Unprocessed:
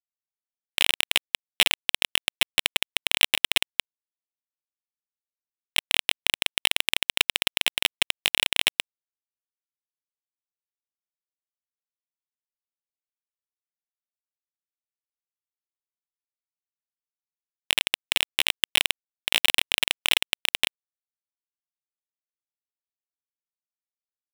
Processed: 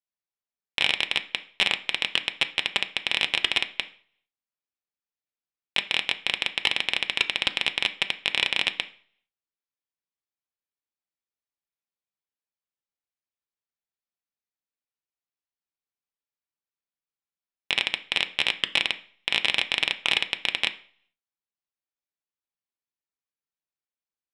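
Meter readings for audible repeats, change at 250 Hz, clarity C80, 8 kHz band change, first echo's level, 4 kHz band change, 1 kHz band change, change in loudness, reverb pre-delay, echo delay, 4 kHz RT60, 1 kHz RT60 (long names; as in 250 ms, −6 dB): no echo audible, +0.5 dB, 20.5 dB, −11.0 dB, no echo audible, −1.5 dB, +0.5 dB, −1.5 dB, 3 ms, no echo audible, 0.45 s, 0.50 s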